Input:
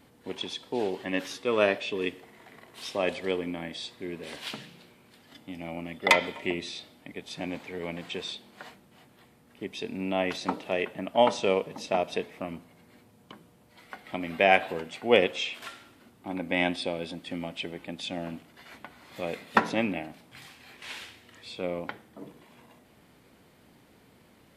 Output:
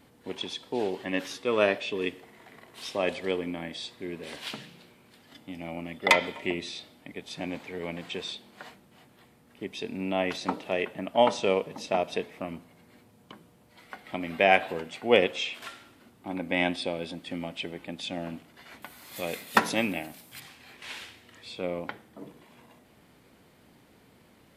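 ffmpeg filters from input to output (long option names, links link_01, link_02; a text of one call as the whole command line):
ffmpeg -i in.wav -filter_complex "[0:a]asettb=1/sr,asplit=3[link_01][link_02][link_03];[link_01]atrim=end=18.824[link_04];[link_02]atrim=start=18.82:end=20.4,asetpts=PTS-STARTPTS,afade=type=in:duration=0.004:curve=qsin,afade=type=out:start_time=1.576:duration=0.004:curve=qsin,aemphasis=mode=production:type=75fm[link_05];[link_03]atrim=start=20.396[link_06];[link_04][link_05]acrossfade=duration=0.004:curve1=hsin:curve2=qsin[link_07];[link_07][link_06]acrossfade=duration=0.004:curve1=qsin:curve2=hsin" out.wav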